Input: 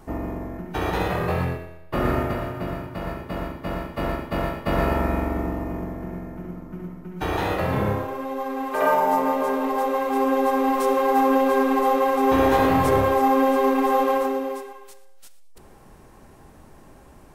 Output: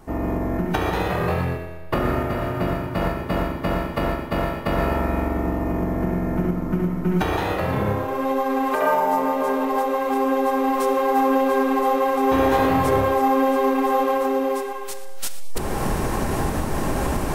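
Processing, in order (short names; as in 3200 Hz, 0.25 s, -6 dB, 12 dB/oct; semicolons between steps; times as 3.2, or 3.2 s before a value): recorder AGC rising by 21 dB/s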